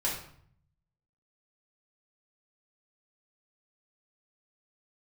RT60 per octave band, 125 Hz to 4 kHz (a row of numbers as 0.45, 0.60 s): 1.2, 0.90, 0.60, 0.60, 0.55, 0.45 s